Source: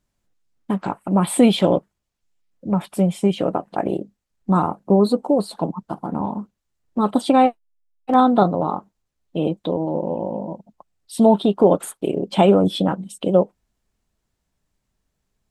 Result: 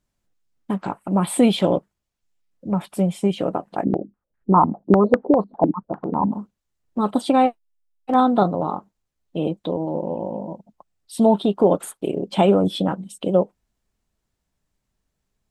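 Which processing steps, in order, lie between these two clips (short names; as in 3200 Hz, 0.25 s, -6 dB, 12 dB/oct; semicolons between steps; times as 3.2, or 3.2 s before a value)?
3.84–6.32 stepped low-pass 10 Hz 240–1700 Hz; gain -2 dB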